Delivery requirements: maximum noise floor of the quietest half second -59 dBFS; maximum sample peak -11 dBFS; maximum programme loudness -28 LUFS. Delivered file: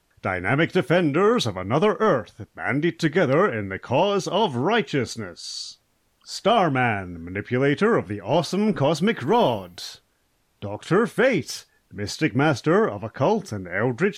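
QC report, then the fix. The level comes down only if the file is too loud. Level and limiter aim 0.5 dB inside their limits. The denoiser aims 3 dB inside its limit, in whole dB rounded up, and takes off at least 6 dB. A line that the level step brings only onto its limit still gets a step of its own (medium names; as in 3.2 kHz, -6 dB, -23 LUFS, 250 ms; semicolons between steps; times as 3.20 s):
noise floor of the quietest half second -67 dBFS: pass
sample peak -8.5 dBFS: fail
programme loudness -22.5 LUFS: fail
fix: trim -6 dB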